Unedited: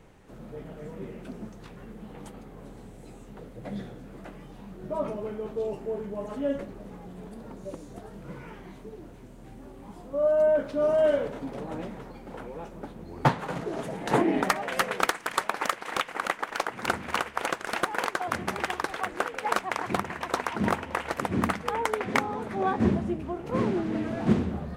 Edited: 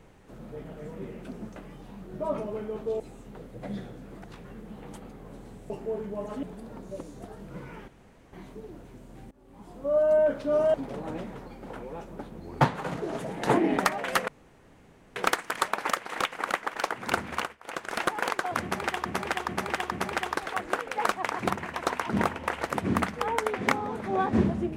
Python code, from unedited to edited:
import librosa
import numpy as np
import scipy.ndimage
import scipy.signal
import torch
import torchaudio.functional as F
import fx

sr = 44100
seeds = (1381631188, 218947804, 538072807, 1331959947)

y = fx.edit(x, sr, fx.swap(start_s=1.56, length_s=1.46, other_s=4.26, other_length_s=1.44),
    fx.cut(start_s=6.43, length_s=0.74),
    fx.insert_room_tone(at_s=8.62, length_s=0.45),
    fx.fade_in_from(start_s=9.6, length_s=0.49, floor_db=-23.5),
    fx.cut(start_s=11.03, length_s=0.35),
    fx.insert_room_tone(at_s=14.92, length_s=0.88),
    fx.fade_down_up(start_s=17.08, length_s=0.58, db=-24.0, fade_s=0.29),
    fx.repeat(start_s=18.38, length_s=0.43, count=4), tone=tone)